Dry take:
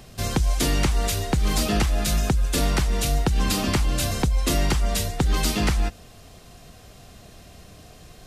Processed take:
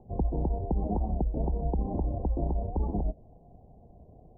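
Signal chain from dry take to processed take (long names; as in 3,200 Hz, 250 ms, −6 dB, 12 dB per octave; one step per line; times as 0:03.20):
Butterworth low-pass 890 Hz 72 dB per octave
hum removal 298.9 Hz, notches 27
time stretch by overlap-add 0.53×, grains 64 ms
wow of a warped record 33 1/3 rpm, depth 160 cents
level −5 dB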